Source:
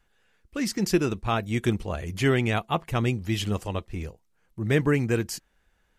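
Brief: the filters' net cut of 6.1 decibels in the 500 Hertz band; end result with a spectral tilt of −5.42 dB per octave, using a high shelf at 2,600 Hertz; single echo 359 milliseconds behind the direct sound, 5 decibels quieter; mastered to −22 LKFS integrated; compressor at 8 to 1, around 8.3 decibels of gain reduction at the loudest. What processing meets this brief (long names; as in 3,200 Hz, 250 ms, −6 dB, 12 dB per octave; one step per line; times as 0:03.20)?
parametric band 500 Hz −8.5 dB
high-shelf EQ 2,600 Hz −3 dB
downward compressor 8 to 1, threshold −28 dBFS
single-tap delay 359 ms −5 dB
level +11.5 dB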